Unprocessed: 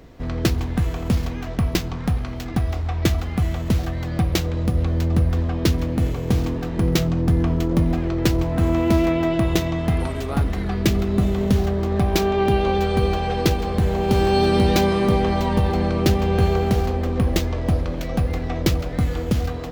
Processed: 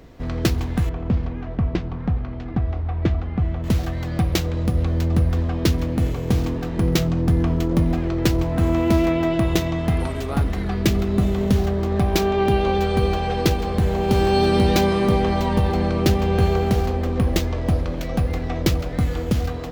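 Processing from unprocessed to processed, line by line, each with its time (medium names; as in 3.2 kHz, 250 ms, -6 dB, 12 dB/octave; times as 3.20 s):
0.89–3.64 s: tape spacing loss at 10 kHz 34 dB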